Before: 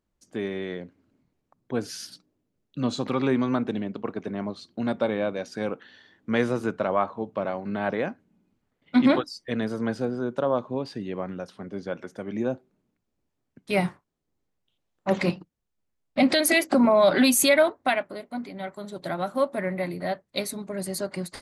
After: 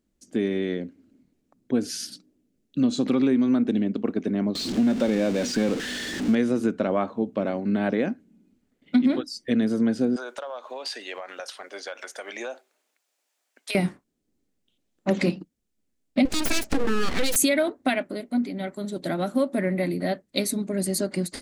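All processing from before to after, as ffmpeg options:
-filter_complex "[0:a]asettb=1/sr,asplit=3[s0][s1][s2];[s0]atrim=end=4.554[s3];[s1]atrim=start=4.55:end=6.35,asetpts=PTS-STARTPTS,afade=t=in:d=0.004:c=qsin,afade=t=out:st=1.796:d=0.004:c=qsin,aeval=exprs='val(0)+0.5*0.0355*sgn(val(0))':c=same,acrossover=split=7500[s4][s5];[s5]acompressor=threshold=0.00158:ratio=4:attack=1:release=60[s6];[s4][s6]amix=inputs=2:normalize=0[s7];[s2]atrim=start=6.346[s8];[s3][s7]acrossfade=d=0.004:c1=hsin:c2=qsin[s9];[s9][s8]acrossfade=d=0.004:c1=qsin:c2=hsin,asettb=1/sr,asplit=3[s10][s11][s12];[s10]atrim=end=10.164[s13];[s11]atrim=start=10.16:end=13.75,asetpts=PTS-STARTPTS,afade=t=in:d=0.004:c=qsin,afade=t=out:st=3.586:d=0.004:c=qsin,highpass=f=700:w=0.5412,highpass=f=700:w=1.3066,acompressor=threshold=0.00891:ratio=6:attack=3.2:release=140:knee=1:detection=peak,aeval=exprs='0.1*sin(PI/2*2*val(0)/0.1)':c=same[s14];[s12]atrim=start=13.746[s15];[s13][s14]acrossfade=d=0.004:c1=hsin:c2=qsin[s16];[s16][s15]acrossfade=d=0.004:c1=qsin:c2=hsin,asettb=1/sr,asplit=3[s17][s18][s19];[s17]atrim=end=16.254[s20];[s18]atrim=start=16.25:end=17.36,asetpts=PTS-STARTPTS,afade=t=in:d=0.004:c=qsin,afade=t=out:st=1.106:d=0.004:c=qsin,highpass=92,aeval=exprs='abs(val(0))':c=same[s21];[s19]atrim=start=17.356[s22];[s20][s21]acrossfade=d=0.004:c1=hsin:c2=qsin[s23];[s23][s22]acrossfade=d=0.004:c1=qsin:c2=hsin,equalizer=f=125:t=o:w=1:g=-5,equalizer=f=250:t=o:w=1:g=9,equalizer=f=1000:t=o:w=1:g=-8,equalizer=f=8000:t=o:w=1:g=4,acompressor=threshold=0.0891:ratio=5,volume=1.41"

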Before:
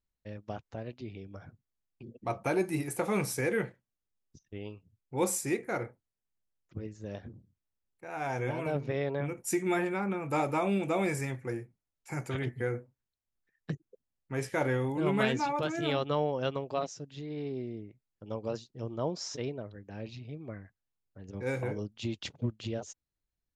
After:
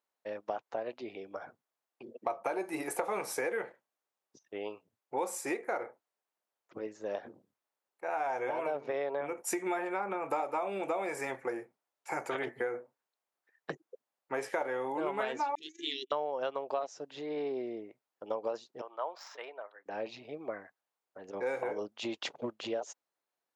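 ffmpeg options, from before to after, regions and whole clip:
-filter_complex "[0:a]asettb=1/sr,asplit=3[s0][s1][s2];[s0]atrim=end=15.554[s3];[s1]atrim=start=15.55:end=16.12,asetpts=PTS-STARTPTS,afade=t=in:d=0.004:c=qsin,afade=t=out:st=0.566:d=0.004:c=qsin,agate=range=0.0178:threshold=0.0224:ratio=16:release=100:detection=peak,asuperstop=centerf=870:order=20:qfactor=0.56,highpass=450,equalizer=f=1500:t=q:w=4:g=-5,equalizer=f=2300:t=q:w=4:g=-9,equalizer=f=3700:t=q:w=4:g=5,equalizer=f=6400:t=q:w=4:g=9,lowpass=f=8400:w=0.5412,lowpass=f=8400:w=1.3066[s4];[s2]atrim=start=16.116[s5];[s3][s4]acrossfade=d=0.004:c1=hsin:c2=qsin[s6];[s6][s5]acrossfade=d=0.004:c1=qsin:c2=hsin,asettb=1/sr,asplit=3[s7][s8][s9];[s7]atrim=end=18.814[s10];[s8]atrim=start=18.81:end=19.86,asetpts=PTS-STARTPTS,afade=t=in:d=0.004:c=qsin,afade=t=out:st=1.046:d=0.004:c=qsin,highpass=1100,adynamicsmooth=sensitivity=6:basefreq=4700,equalizer=f=6000:w=0.92:g=-10.5[s11];[s9]atrim=start=19.856[s12];[s10][s11]acrossfade=d=0.004:c1=hsin:c2=qsin[s13];[s13][s12]acrossfade=d=0.004:c1=qsin:c2=hsin,highpass=380,equalizer=f=800:w=0.54:g=12,acompressor=threshold=0.0282:ratio=6"

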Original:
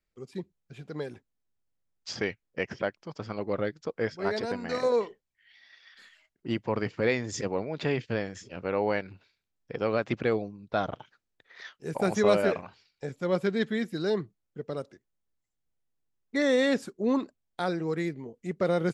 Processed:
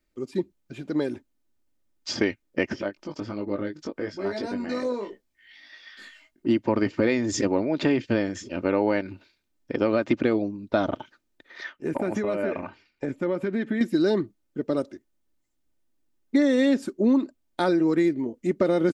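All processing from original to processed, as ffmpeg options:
-filter_complex "[0:a]asettb=1/sr,asplit=3[s0][s1][s2];[s0]atrim=end=2.764[s3];[s1]atrim=start=2.76:end=6.47,asetpts=PTS-STARTPTS,afade=t=in:d=0.004:c=qsin,afade=t=out:st=3.706:d=0.004:c=qsin,acompressor=threshold=0.00631:ratio=2:attack=3.2:release=140:knee=1:detection=peak,asplit=2[s4][s5];[s5]adelay=20,volume=0.631[s6];[s4][s6]amix=inputs=2:normalize=0,atrim=end_sample=163611[s7];[s2]atrim=start=6.466[s8];[s3][s7]acrossfade=d=0.004:c1=hsin:c2=qsin[s9];[s9][s8]acrossfade=d=0.004:c1=qsin:c2=hsin,asettb=1/sr,asplit=3[s10][s11][s12];[s10]atrim=end=11.644[s13];[s11]atrim=start=11.64:end=13.81,asetpts=PTS-STARTPTS,afade=t=in:d=0.004:c=qsin,afade=t=out:st=2.166:d=0.004:c=qsin,highshelf=f=3100:t=q:w=1.5:g=-7.5,acompressor=threshold=0.0282:ratio=8:attack=3.2:release=140:knee=1:detection=peak[s14];[s12]atrim=start=13.806[s15];[s13][s14]acrossfade=d=0.004:c1=hsin:c2=qsin[s16];[s16][s15]acrossfade=d=0.004:c1=qsin:c2=hsin,equalizer=f=290:t=o:w=1.1:g=7.5,aecho=1:1:3.3:0.42,acompressor=threshold=0.0708:ratio=6,volume=1.88"

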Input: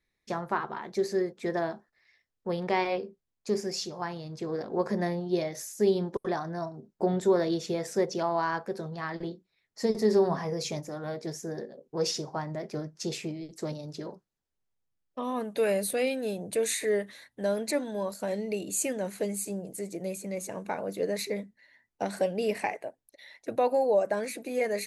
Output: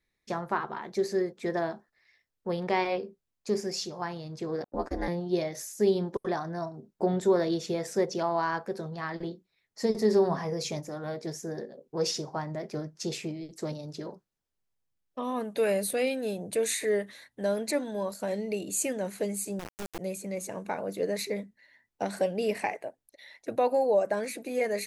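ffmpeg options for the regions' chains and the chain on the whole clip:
-filter_complex "[0:a]asettb=1/sr,asplit=3[s0][s1][s2];[s0]atrim=end=4.644[s3];[s1]atrim=start=4.64:end=5.08,asetpts=PTS-STARTPTS,afade=t=in:d=0.004:c=qsin,afade=t=out:st=0.436:d=0.004:c=qsin,agate=range=0.00158:threshold=0.0158:ratio=16:release=100:detection=peak,aecho=1:1:6.8:0.42,atrim=end_sample=19404,aeval=exprs='val(0)*sin(2*PI*140*n/s)':c=same[s4];[s2]atrim=start=5.076[s5];[s3][s4]acrossfade=d=0.004:c1=hsin:c2=qsin[s6];[s6][s5]acrossfade=d=0.004:c1=qsin:c2=hsin,asettb=1/sr,asplit=3[s7][s8][s9];[s7]atrim=end=19.594[s10];[s8]atrim=start=19.59:end=19.99,asetpts=PTS-STARTPTS,afade=t=in:d=0.004:c=qsin,afade=t=out:st=0.396:d=0.004:c=qsin,aemphasis=mode=reproduction:type=cd,acrusher=bits=3:dc=4:mix=0:aa=0.000001[s11];[s9]atrim=start=19.986[s12];[s10][s11]acrossfade=d=0.004:c1=hsin:c2=qsin[s13];[s13][s12]acrossfade=d=0.004:c1=qsin:c2=hsin"

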